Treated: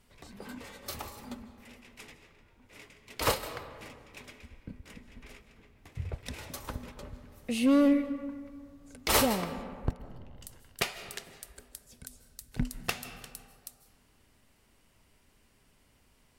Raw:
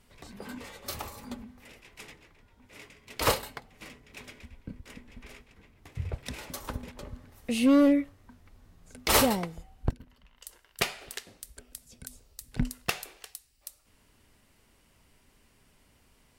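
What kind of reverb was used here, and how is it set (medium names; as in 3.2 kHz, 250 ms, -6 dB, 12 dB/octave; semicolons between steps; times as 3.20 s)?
algorithmic reverb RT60 2 s, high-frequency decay 0.45×, pre-delay 115 ms, DRR 11.5 dB; trim -2.5 dB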